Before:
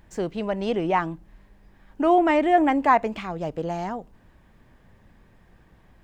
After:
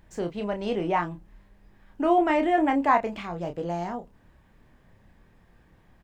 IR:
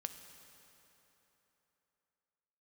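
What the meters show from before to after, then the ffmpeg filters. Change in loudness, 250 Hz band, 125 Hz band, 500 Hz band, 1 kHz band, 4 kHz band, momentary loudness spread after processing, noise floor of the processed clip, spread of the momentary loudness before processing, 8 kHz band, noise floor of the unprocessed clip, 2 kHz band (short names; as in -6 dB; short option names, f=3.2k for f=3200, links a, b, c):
-2.5 dB, -2.5 dB, -2.0 dB, -3.0 dB, -3.0 dB, -2.5 dB, 13 LU, -60 dBFS, 13 LU, n/a, -57 dBFS, -2.5 dB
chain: -filter_complex "[0:a]asplit=2[a][b];[b]adelay=29,volume=-6.5dB[c];[a][c]amix=inputs=2:normalize=0,volume=-3.5dB"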